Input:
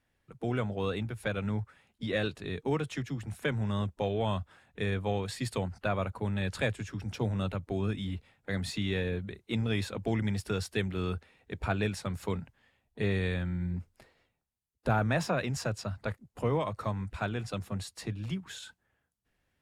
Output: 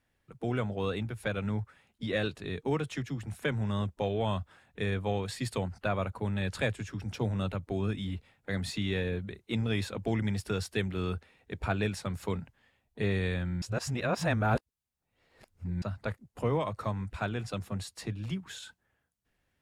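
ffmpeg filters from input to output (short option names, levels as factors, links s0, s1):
-filter_complex "[0:a]asplit=3[s0][s1][s2];[s0]atrim=end=13.622[s3];[s1]atrim=start=13.618:end=15.822,asetpts=PTS-STARTPTS,areverse[s4];[s2]atrim=start=15.818[s5];[s3][s4]acrossfade=d=0.004:c1=hsin:c2=hsin[s6];[s6][s5]acrossfade=d=0.004:c1=hsin:c2=hsin"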